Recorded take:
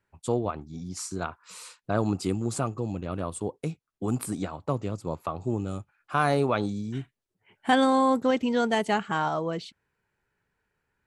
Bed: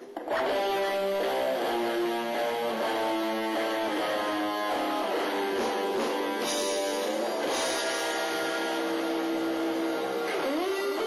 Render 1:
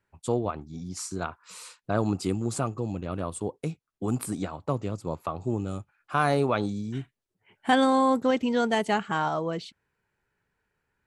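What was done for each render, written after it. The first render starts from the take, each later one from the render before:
no processing that can be heard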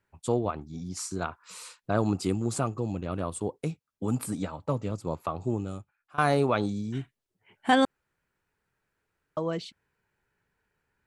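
0:03.71–0:04.91: notch comb filter 360 Hz
0:05.46–0:06.18: fade out, to −21.5 dB
0:07.85–0:09.37: fill with room tone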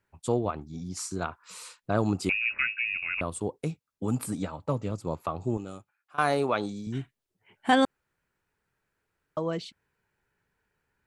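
0:02.29–0:03.21: voice inversion scrambler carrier 2,700 Hz
0:05.57–0:06.87: high-pass filter 300 Hz 6 dB per octave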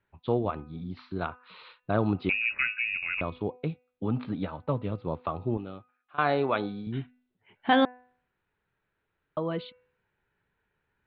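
Butterworth low-pass 4,000 Hz 72 dB per octave
hum removal 249.3 Hz, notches 11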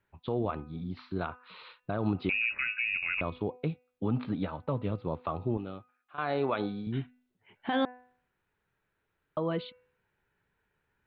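brickwall limiter −20 dBFS, peak gain reduction 11.5 dB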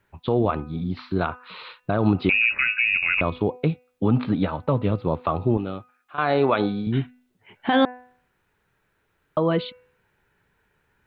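level +10 dB

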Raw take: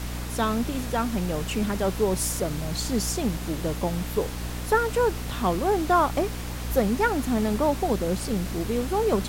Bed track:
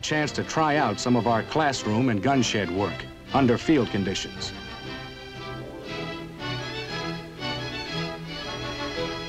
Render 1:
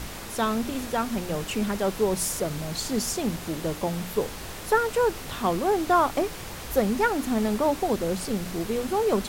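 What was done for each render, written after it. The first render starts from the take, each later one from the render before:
mains-hum notches 60/120/180/240/300 Hz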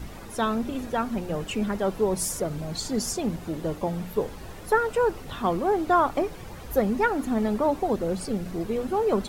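broadband denoise 11 dB, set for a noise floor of −38 dBFS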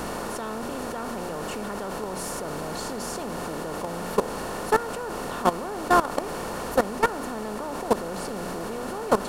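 compressor on every frequency bin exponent 0.4
output level in coarse steps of 16 dB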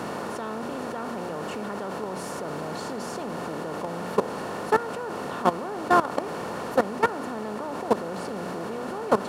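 high-pass filter 90 Hz 24 dB per octave
high-shelf EQ 6,100 Hz −11 dB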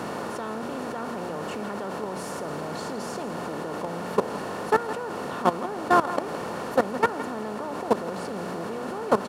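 single-tap delay 165 ms −13.5 dB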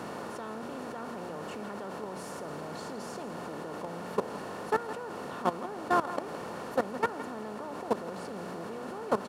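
level −7 dB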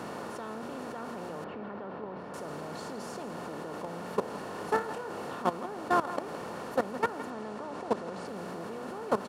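0:01.44–0:02.34: high-frequency loss of the air 370 metres
0:04.52–0:05.35: flutter between parallel walls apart 5 metres, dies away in 0.28 s
0:07.30–0:08.26: low-pass filter 8,700 Hz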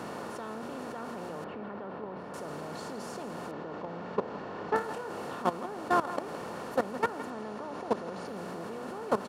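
0:03.51–0:04.76: high-frequency loss of the air 180 metres
0:07.41–0:08.37: notch filter 7,900 Hz, Q 7.3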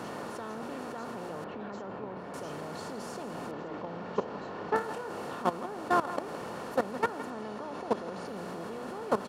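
mix in bed track −28.5 dB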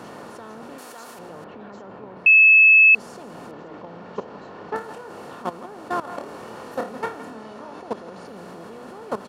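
0:00.78–0:01.19: RIAA equalisation recording
0:02.26–0:02.95: beep over 2,600 Hz −8.5 dBFS
0:06.01–0:07.80: flutter between parallel walls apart 4.6 metres, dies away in 0.3 s

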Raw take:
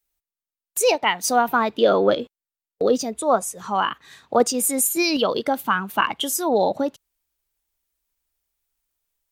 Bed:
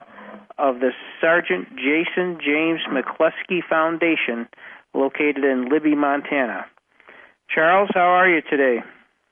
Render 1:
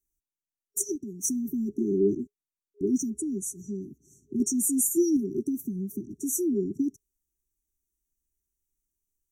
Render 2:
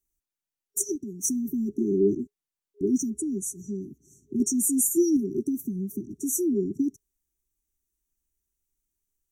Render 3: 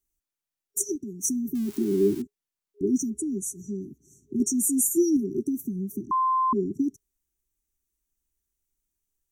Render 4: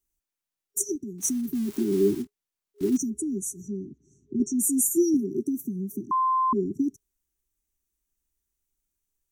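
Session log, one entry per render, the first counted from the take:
brick-wall band-stop 410–5,600 Hz; high-shelf EQ 8,700 Hz −8.5 dB
level +1.5 dB
0:01.55–0:02.22: spike at every zero crossing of −30 dBFS; 0:06.11–0:06.53: beep over 1,040 Hz −20 dBFS
0:01.18–0:02.97: one scale factor per block 5 bits; 0:03.68–0:04.59: high-frequency loss of the air 120 metres; 0:05.14–0:06.13: high-pass filter 120 Hz

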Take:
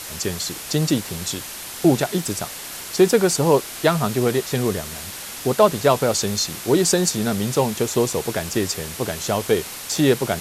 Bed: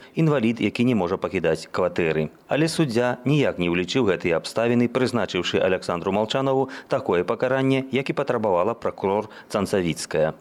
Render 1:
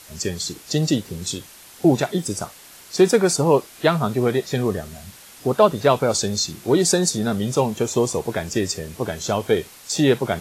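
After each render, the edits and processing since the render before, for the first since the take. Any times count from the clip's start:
noise reduction from a noise print 11 dB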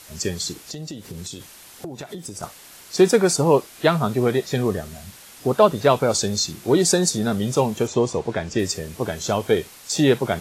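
0:00.63–0:02.43: downward compressor 20 to 1, threshold −29 dBFS
0:07.87–0:08.59: high-frequency loss of the air 85 metres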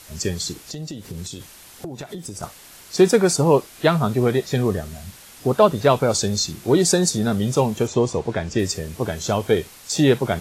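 low-shelf EQ 110 Hz +7 dB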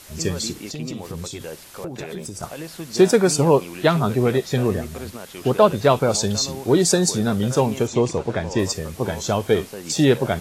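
mix in bed −13.5 dB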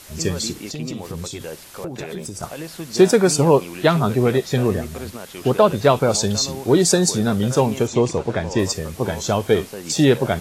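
level +1.5 dB
brickwall limiter −3 dBFS, peak gain reduction 2 dB

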